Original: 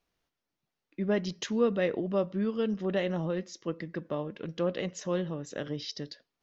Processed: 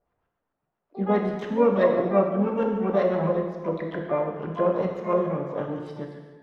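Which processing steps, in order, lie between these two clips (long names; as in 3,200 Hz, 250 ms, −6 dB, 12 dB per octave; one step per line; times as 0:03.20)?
auto-filter low-pass saw up 7.6 Hz 550–1,600 Hz
pitch-shifted copies added +3 semitones −12 dB, +12 semitones −12 dB
reverb whose tail is shaped and stops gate 470 ms falling, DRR 1 dB
level +1.5 dB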